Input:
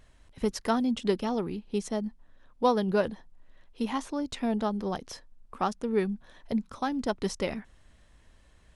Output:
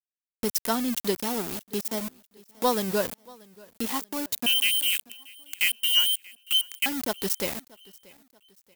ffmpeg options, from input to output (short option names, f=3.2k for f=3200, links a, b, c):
-filter_complex "[0:a]asettb=1/sr,asplit=3[a][b][c];[a]atrim=end=4.464[d];[b]atrim=start=4.46:end=6.86,asetpts=PTS-STARTPTS,afade=t=in:d=0.004:c=qsin,afade=t=out:st=2.396:d=0.004:c=qsin,lowpass=f=2.8k:t=q:w=0.5098,lowpass=f=2.8k:t=q:w=0.6013,lowpass=f=2.8k:t=q:w=0.9,lowpass=f=2.8k:t=q:w=2.563,afreqshift=-3300[e];[c]atrim=start=6.856[f];[d][e]acrossfade=d=0.004:c1=hsin:c2=qsin[g];[g][f]acrossfade=d=0.004:c1=qsin:c2=hsin,aeval=exprs='0.251*(cos(1*acos(clip(val(0)/0.251,-1,1)))-cos(1*PI/2))+0.02*(cos(2*acos(clip(val(0)/0.251,-1,1)))-cos(2*PI/2))':c=same,aeval=exprs='val(0)*gte(abs(val(0)),0.02)':c=same,aemphasis=mode=production:type=75fm,acompressor=mode=upward:threshold=-31dB:ratio=2.5,lowshelf=f=69:g=-7,aecho=1:1:633|1266|1899:0.0631|0.0259|0.0106"